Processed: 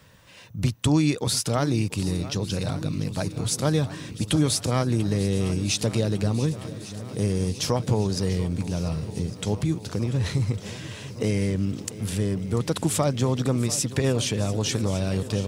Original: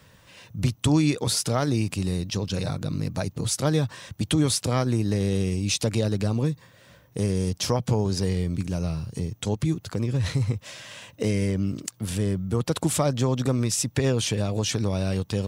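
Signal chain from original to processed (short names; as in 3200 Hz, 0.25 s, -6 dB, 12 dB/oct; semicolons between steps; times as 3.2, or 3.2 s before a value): swung echo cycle 1.153 s, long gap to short 1.5:1, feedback 65%, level -16 dB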